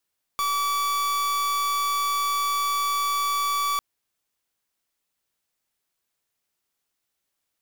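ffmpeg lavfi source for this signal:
-f lavfi -i "aevalsrc='0.0596*(2*lt(mod(1150*t,1),0.43)-1)':d=3.4:s=44100"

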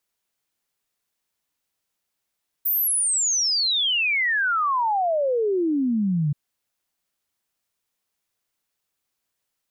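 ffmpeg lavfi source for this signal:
-f lavfi -i "aevalsrc='0.112*clip(min(t,3.68-t)/0.01,0,1)*sin(2*PI*15000*3.68/log(140/15000)*(exp(log(140/15000)*t/3.68)-1))':d=3.68:s=44100"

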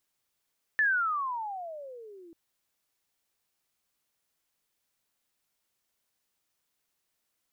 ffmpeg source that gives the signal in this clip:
-f lavfi -i "aevalsrc='pow(10,(-21-27*t/1.54)/20)*sin(2*PI*1780*1.54/(-29.5*log(2)/12)*(exp(-29.5*log(2)/12*t/1.54)-1))':d=1.54:s=44100"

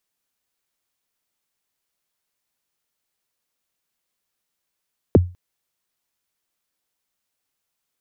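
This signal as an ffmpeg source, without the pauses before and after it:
-f lavfi -i "aevalsrc='0.562*pow(10,-3*t/0.3)*sin(2*PI*(560*0.023/log(89/560)*(exp(log(89/560)*min(t,0.023)/0.023)-1)+89*max(t-0.023,0)))':d=0.2:s=44100"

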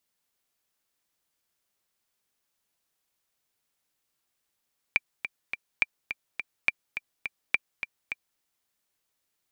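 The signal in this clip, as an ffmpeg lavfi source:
-f lavfi -i "aevalsrc='pow(10,(-8-10*gte(mod(t,3*60/209),60/209))/20)*sin(2*PI*2360*mod(t,60/209))*exp(-6.91*mod(t,60/209)/0.03)':d=3.44:s=44100"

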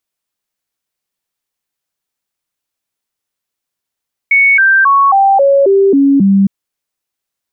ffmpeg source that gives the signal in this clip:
-f lavfi -i "aevalsrc='0.562*clip(min(mod(t,0.27),0.27-mod(t,0.27))/0.005,0,1)*sin(2*PI*2220*pow(2,-floor(t/0.27)/2)*mod(t,0.27))':d=2.16:s=44100"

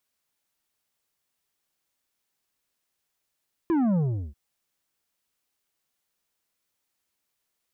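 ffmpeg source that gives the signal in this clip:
-f lavfi -i "aevalsrc='0.0891*clip((0.64-t)/0.38,0,1)*tanh(2.51*sin(2*PI*350*0.64/log(65/350)*(exp(log(65/350)*t/0.64)-1)))/tanh(2.51)':d=0.64:s=44100"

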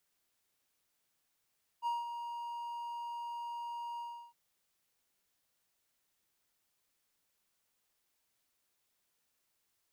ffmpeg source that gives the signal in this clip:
-f lavfi -i "aevalsrc='0.0376*(1-4*abs(mod(945*t+0.25,1)-0.5))':d=2.512:s=44100,afade=t=in:d=0.044,afade=t=out:st=0.044:d=0.18:silence=0.376,afade=t=out:st=2.17:d=0.342"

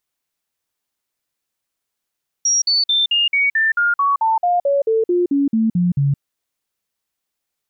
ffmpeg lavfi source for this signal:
-f lavfi -i "aevalsrc='0.224*clip(min(mod(t,0.22),0.17-mod(t,0.22))/0.005,0,1)*sin(2*PI*5660*pow(2,-floor(t/0.22)/3)*mod(t,0.22))':d=3.74:s=44100"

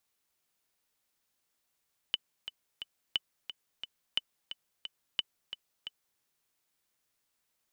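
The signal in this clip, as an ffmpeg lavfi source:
-f lavfi -i "aevalsrc='pow(10,(-15-11*gte(mod(t,3*60/177),60/177))/20)*sin(2*PI*3000*mod(t,60/177))*exp(-6.91*mod(t,60/177)/0.03)':d=4.06:s=44100"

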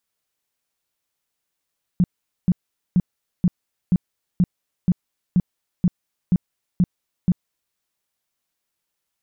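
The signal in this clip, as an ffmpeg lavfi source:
-f lavfi -i "aevalsrc='0.251*sin(2*PI*179*mod(t,0.48))*lt(mod(t,0.48),7/179)':d=5.76:s=44100"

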